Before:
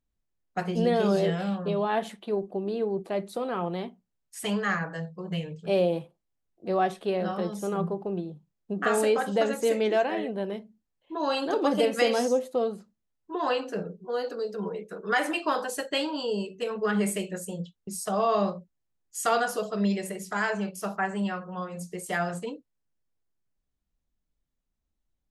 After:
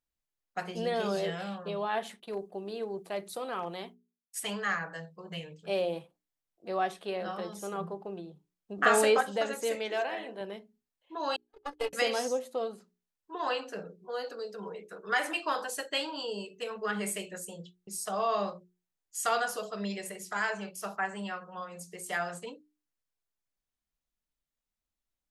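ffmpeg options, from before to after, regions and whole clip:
-filter_complex "[0:a]asettb=1/sr,asplit=3[s0][s1][s2];[s0]atrim=end=2.204[s3];[s1]atrim=start=2.2:end=4.4,asetpts=PTS-STARTPTS,afade=t=in:d=0.004:c=qsin,afade=t=out:st=2.196:d=0.004:c=qsin,agate=range=0.0224:threshold=0.00562:ratio=3:release=100:detection=peak,highshelf=f=6000:g=9,asoftclip=type=hard:threshold=0.106[s4];[s2]atrim=start=4.396[s5];[s3][s4]acrossfade=d=0.004:c1=hsin:c2=qsin[s6];[s6][s5]acrossfade=d=0.004:c1=qsin:c2=hsin,asettb=1/sr,asplit=3[s7][s8][s9];[s7]atrim=end=8.784[s10];[s8]atrim=start=8.78:end=9.21,asetpts=PTS-STARTPTS,afade=t=in:d=0.004:c=qsin,afade=t=out:st=0.426:d=0.004:c=qsin,highshelf=f=8000:g=-4,acontrast=78[s11];[s9]atrim=start=9.206[s12];[s10][s11]acrossfade=d=0.004:c1=hsin:c2=qsin[s13];[s13][s12]acrossfade=d=0.004:c1=qsin:c2=hsin,asettb=1/sr,asplit=3[s14][s15][s16];[s14]atrim=end=9.754[s17];[s15]atrim=start=9.75:end=10.41,asetpts=PTS-STARTPTS,afade=t=in:d=0.004:c=qsin,afade=t=out:st=0.656:d=0.004:c=qsin,lowshelf=f=180:g=-11,bandreject=f=47.59:t=h:w=4,bandreject=f=95.18:t=h:w=4,bandreject=f=142.77:t=h:w=4,bandreject=f=190.36:t=h:w=4,bandreject=f=237.95:t=h:w=4,bandreject=f=285.54:t=h:w=4,bandreject=f=333.13:t=h:w=4,bandreject=f=380.72:t=h:w=4,bandreject=f=428.31:t=h:w=4,bandreject=f=475.9:t=h:w=4,bandreject=f=523.49:t=h:w=4,bandreject=f=571.08:t=h:w=4,bandreject=f=618.67:t=h:w=4,bandreject=f=666.26:t=h:w=4,bandreject=f=713.85:t=h:w=4,bandreject=f=761.44:t=h:w=4,bandreject=f=809.03:t=h:w=4,bandreject=f=856.62:t=h:w=4,bandreject=f=904.21:t=h:w=4,bandreject=f=951.8:t=h:w=4,bandreject=f=999.39:t=h:w=4,bandreject=f=1046.98:t=h:w=4,bandreject=f=1094.57:t=h:w=4,bandreject=f=1142.16:t=h:w=4,bandreject=f=1189.75:t=h:w=4,bandreject=f=1237.34:t=h:w=4,bandreject=f=1284.93:t=h:w=4,bandreject=f=1332.52:t=h:w=4,bandreject=f=1380.11:t=h:w=4,bandreject=f=1427.7:t=h:w=4,bandreject=f=1475.29:t=h:w=4,bandreject=f=1522.88:t=h:w=4,bandreject=f=1570.47:t=h:w=4,bandreject=f=1618.06:t=h:w=4,bandreject=f=1665.65:t=h:w=4,bandreject=f=1713.24:t=h:w=4,bandreject=f=1760.83:t=h:w=4,bandreject=f=1808.42:t=h:w=4,asoftclip=type=hard:threshold=0.141[s18];[s16]atrim=start=10.406[s19];[s17][s18]acrossfade=d=0.004:c1=hsin:c2=qsin[s20];[s20][s19]acrossfade=d=0.004:c1=qsin:c2=hsin,asettb=1/sr,asplit=3[s21][s22][s23];[s21]atrim=end=11.364[s24];[s22]atrim=start=11.36:end=11.93,asetpts=PTS-STARTPTS,afade=t=in:d=0.004:c=qsin,afade=t=out:st=0.566:d=0.004:c=qsin,aeval=exprs='if(lt(val(0),0),0.447*val(0),val(0))':c=same,agate=range=0.00178:threshold=0.0631:ratio=16:release=100:detection=peak,aecho=1:1:2.4:0.77,atrim=end_sample=25137[s25];[s23]atrim=start=11.926[s26];[s24][s25]acrossfade=d=0.004:c1=hsin:c2=qsin[s27];[s27][s26]acrossfade=d=0.004:c1=qsin:c2=hsin,lowshelf=f=480:g=-10.5,bandreject=f=60:t=h:w=6,bandreject=f=120:t=h:w=6,bandreject=f=180:t=h:w=6,bandreject=f=240:t=h:w=6,bandreject=f=300:t=h:w=6,bandreject=f=360:t=h:w=6,bandreject=f=420:t=h:w=6,volume=0.841"

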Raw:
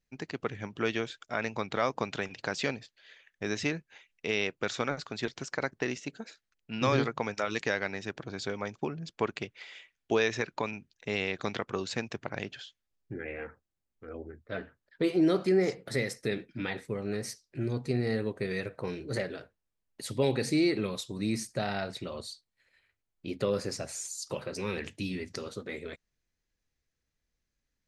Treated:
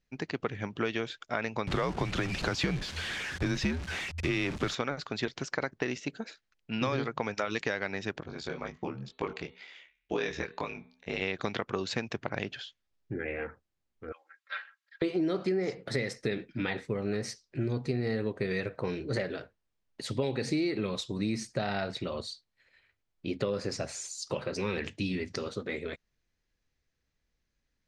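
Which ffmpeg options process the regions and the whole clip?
-filter_complex "[0:a]asettb=1/sr,asplit=3[s0][s1][s2];[s0]atrim=end=1.674[s3];[s1]atrim=start=1.67:end=4.75,asetpts=PTS-STARTPTS,afade=t=in:d=0.004:c=qsin,afade=t=out:st=3.076:d=0.004:c=qsin,aeval=exprs='val(0)+0.5*0.02*sgn(val(0))':c=same,equalizer=f=250:w=2:g=8,afreqshift=-85[s4];[s2]atrim=start=4.746[s5];[s3][s4]acrossfade=d=0.004:c1=hsin:c2=qsin[s6];[s6][s5]acrossfade=d=0.004:c1=qsin:c2=hsin,asettb=1/sr,asplit=3[s7][s8][s9];[s7]atrim=end=8.204[s10];[s8]atrim=start=8.2:end=11.22,asetpts=PTS-STARTPTS,afade=t=in:d=0.004:c=qsin,afade=t=out:st=3.016:d=0.004:c=qsin,bandreject=f=216.8:t=h:w=4,bandreject=f=433.6:t=h:w=4,bandreject=f=650.4:t=h:w=4,bandreject=f=867.2:t=h:w=4,bandreject=f=1084:t=h:w=4,bandreject=f=1300.8:t=h:w=4,bandreject=f=1517.6:t=h:w=4,bandreject=f=1734.4:t=h:w=4,bandreject=f=1951.2:t=h:w=4,bandreject=f=2168:t=h:w=4,bandreject=f=2384.8:t=h:w=4,bandreject=f=2601.6:t=h:w=4,bandreject=f=2818.4:t=h:w=4,bandreject=f=3035.2:t=h:w=4,bandreject=f=3252:t=h:w=4,bandreject=f=3468.8:t=h:w=4,bandreject=f=3685.6:t=h:w=4,bandreject=f=3902.4:t=h:w=4,bandreject=f=4119.2:t=h:w=4,bandreject=f=4336:t=h:w=4,aeval=exprs='val(0)*sin(2*PI*36*n/s)':c=same,flanger=delay=19.5:depth=4.9:speed=2[s11];[s9]atrim=start=11.216[s12];[s10][s11]acrossfade=d=0.004:c1=hsin:c2=qsin[s13];[s13][s12]acrossfade=d=0.004:c1=qsin:c2=hsin,asettb=1/sr,asplit=3[s14][s15][s16];[s14]atrim=end=14.124[s17];[s15]atrim=start=14.12:end=15.02,asetpts=PTS-STARTPTS,afade=t=in:d=0.004:c=qsin,afade=t=out:st=0.896:d=0.004:c=qsin,highpass=f=1200:w=0.5412,highpass=f=1200:w=1.3066,aecho=1:1:3.7:0.97,atrim=end_sample=39690[s18];[s16]atrim=start=15.016[s19];[s17][s18]acrossfade=d=0.004:c1=hsin:c2=qsin[s20];[s20][s19]acrossfade=d=0.004:c1=qsin:c2=hsin,lowpass=5800,acompressor=threshold=0.0316:ratio=6,volume=1.5"

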